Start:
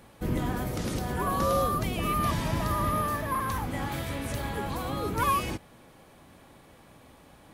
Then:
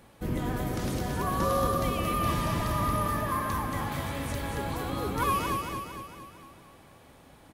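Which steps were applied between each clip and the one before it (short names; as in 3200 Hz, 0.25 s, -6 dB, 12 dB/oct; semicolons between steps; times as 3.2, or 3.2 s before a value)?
feedback echo 0.228 s, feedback 53%, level -4.5 dB; gain -2 dB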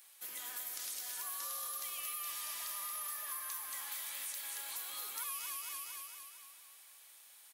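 HPF 1300 Hz 6 dB/oct; differentiator; compressor 4:1, threshold -46 dBFS, peak gain reduction 9.5 dB; gain +6.5 dB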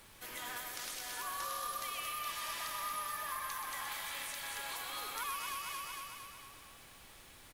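LPF 1900 Hz 6 dB/oct; added noise pink -71 dBFS; on a send: echo 0.126 s -8.5 dB; on the sum: gain +9.5 dB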